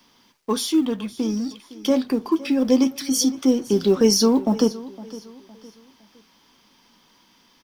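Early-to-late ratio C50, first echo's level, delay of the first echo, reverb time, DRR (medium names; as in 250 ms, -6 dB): no reverb, -18.0 dB, 511 ms, no reverb, no reverb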